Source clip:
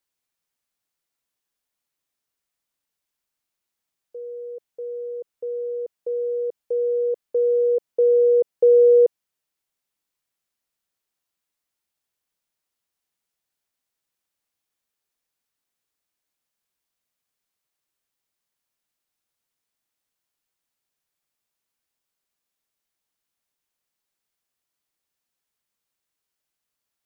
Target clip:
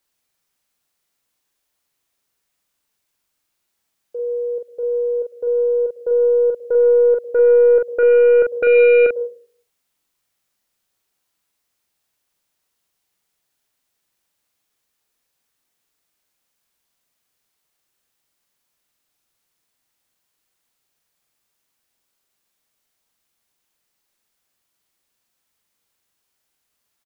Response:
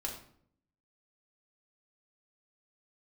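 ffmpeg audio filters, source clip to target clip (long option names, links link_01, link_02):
-filter_complex "[0:a]asplit=2[link_01][link_02];[1:a]atrim=start_sample=2205,asetrate=70560,aresample=44100,adelay=98[link_03];[link_02][link_03]afir=irnorm=-1:irlink=0,volume=-14.5dB[link_04];[link_01][link_04]amix=inputs=2:normalize=0,aeval=exprs='0.376*(cos(1*acos(clip(val(0)/0.376,-1,1)))-cos(1*PI/2))+0.0106*(cos(2*acos(clip(val(0)/0.376,-1,1)))-cos(2*PI/2))+0.0106*(cos(4*acos(clip(val(0)/0.376,-1,1)))-cos(4*PI/2))+0.106*(cos(5*acos(clip(val(0)/0.376,-1,1)))-cos(5*PI/2))+0.00422*(cos(8*acos(clip(val(0)/0.376,-1,1)))-cos(8*PI/2))':channel_layout=same,asplit=2[link_05][link_06];[link_06]adelay=44,volume=-4dB[link_07];[link_05][link_07]amix=inputs=2:normalize=0"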